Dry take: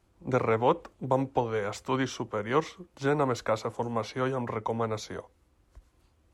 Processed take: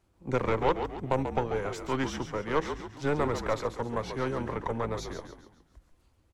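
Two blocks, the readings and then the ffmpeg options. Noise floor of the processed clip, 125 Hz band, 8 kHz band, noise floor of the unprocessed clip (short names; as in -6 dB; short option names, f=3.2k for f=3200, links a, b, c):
-68 dBFS, -1.0 dB, -1.5 dB, -67 dBFS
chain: -filter_complex "[0:a]aeval=exprs='0.316*(cos(1*acos(clip(val(0)/0.316,-1,1)))-cos(1*PI/2))+0.0355*(cos(6*acos(clip(val(0)/0.316,-1,1)))-cos(6*PI/2))':c=same,asplit=6[a][b][c][d][e][f];[b]adelay=138,afreqshift=-54,volume=-8dB[g];[c]adelay=276,afreqshift=-108,volume=-15.1dB[h];[d]adelay=414,afreqshift=-162,volume=-22.3dB[i];[e]adelay=552,afreqshift=-216,volume=-29.4dB[j];[f]adelay=690,afreqshift=-270,volume=-36.5dB[k];[a][g][h][i][j][k]amix=inputs=6:normalize=0,volume=-2.5dB"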